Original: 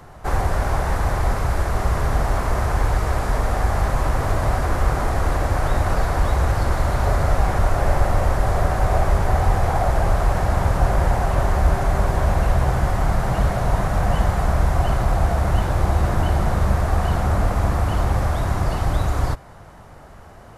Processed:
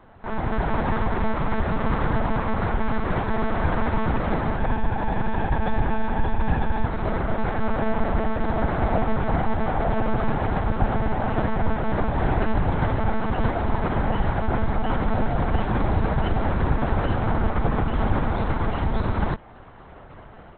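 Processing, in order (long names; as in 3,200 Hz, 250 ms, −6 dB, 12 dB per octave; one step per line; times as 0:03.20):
0:04.59–0:06.86: comb filter 1.2 ms, depth 95%
automatic gain control gain up to 7.5 dB
one-pitch LPC vocoder at 8 kHz 220 Hz
level −8 dB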